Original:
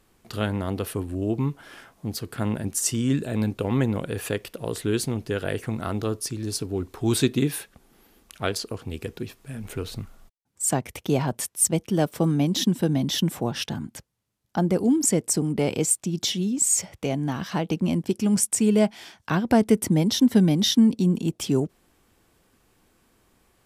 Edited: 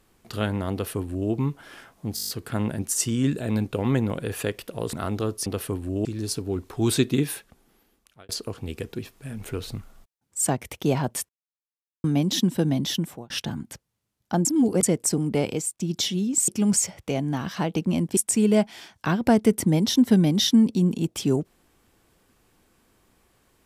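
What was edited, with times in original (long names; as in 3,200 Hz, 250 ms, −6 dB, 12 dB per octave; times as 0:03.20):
0:00.72–0:01.31: duplicate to 0:06.29
0:02.15: stutter 0.02 s, 8 plays
0:04.79–0:05.76: remove
0:07.53–0:08.53: fade out
0:11.53–0:12.28: silence
0:12.91–0:13.54: fade out equal-power
0:14.69–0:15.07: reverse
0:15.64–0:16.04: fade out, to −14.5 dB
0:18.12–0:18.41: move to 0:16.72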